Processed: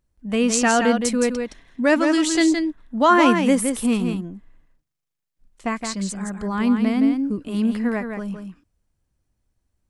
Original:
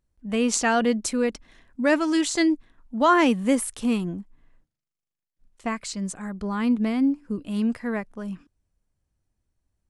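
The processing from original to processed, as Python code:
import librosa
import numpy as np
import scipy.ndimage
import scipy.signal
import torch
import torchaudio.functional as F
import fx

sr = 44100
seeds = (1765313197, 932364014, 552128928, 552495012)

y = x + 10.0 ** (-6.0 / 20.0) * np.pad(x, (int(167 * sr / 1000.0), 0))[:len(x)]
y = y * librosa.db_to_amplitude(3.0)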